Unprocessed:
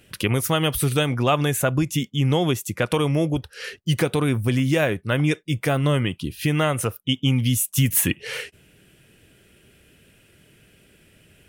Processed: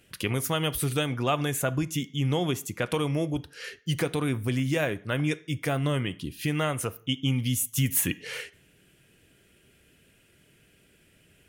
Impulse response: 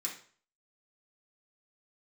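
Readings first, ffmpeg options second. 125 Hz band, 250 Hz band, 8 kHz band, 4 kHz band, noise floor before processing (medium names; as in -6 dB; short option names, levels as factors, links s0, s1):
-6.5 dB, -6.0 dB, -5.0 dB, -5.5 dB, -57 dBFS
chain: -filter_complex "[0:a]asplit=2[s0][s1];[1:a]atrim=start_sample=2205,asetrate=39690,aresample=44100[s2];[s1][s2]afir=irnorm=-1:irlink=0,volume=0.2[s3];[s0][s3]amix=inputs=2:normalize=0,volume=0.473"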